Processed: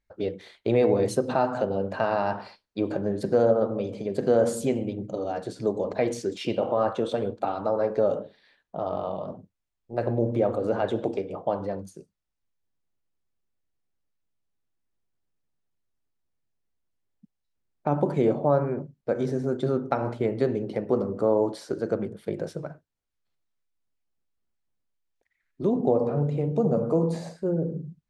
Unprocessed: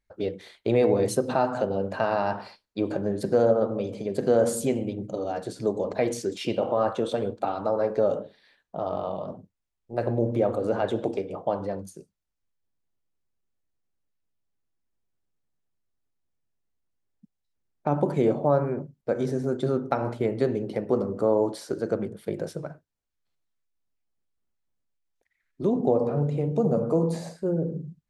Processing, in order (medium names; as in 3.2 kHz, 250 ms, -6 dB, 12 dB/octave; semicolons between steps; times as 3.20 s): treble shelf 9.9 kHz -11 dB